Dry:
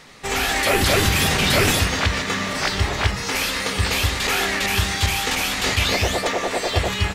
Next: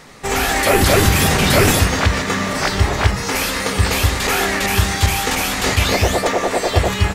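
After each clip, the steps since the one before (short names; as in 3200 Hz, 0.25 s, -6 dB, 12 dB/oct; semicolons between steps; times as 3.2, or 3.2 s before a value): bell 3300 Hz -6 dB 1.8 oct; gain +6 dB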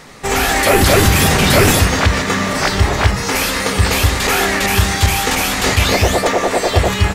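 soft clip -3 dBFS, distortion -25 dB; gain +3 dB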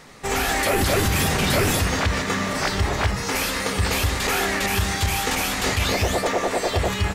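limiter -5.5 dBFS, peak gain reduction 4 dB; gain -7 dB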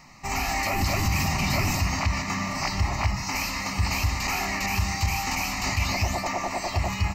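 fixed phaser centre 2300 Hz, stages 8; gain -1.5 dB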